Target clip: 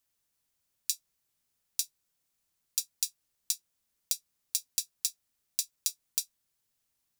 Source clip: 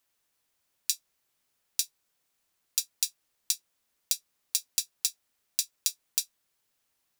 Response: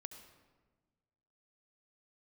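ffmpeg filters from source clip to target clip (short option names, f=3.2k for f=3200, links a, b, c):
-af "bass=f=250:g=8,treble=f=4k:g=5,volume=-7dB"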